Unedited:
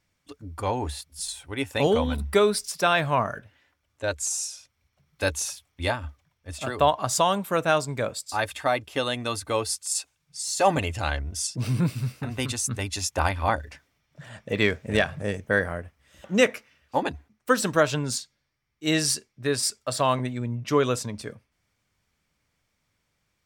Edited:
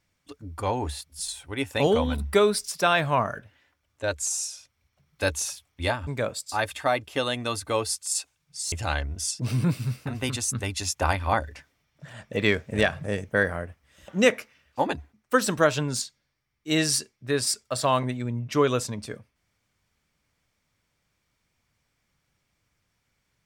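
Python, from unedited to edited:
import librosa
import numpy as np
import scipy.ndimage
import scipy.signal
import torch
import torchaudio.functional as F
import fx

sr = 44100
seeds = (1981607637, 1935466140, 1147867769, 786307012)

y = fx.edit(x, sr, fx.cut(start_s=6.07, length_s=1.8),
    fx.cut(start_s=10.52, length_s=0.36), tone=tone)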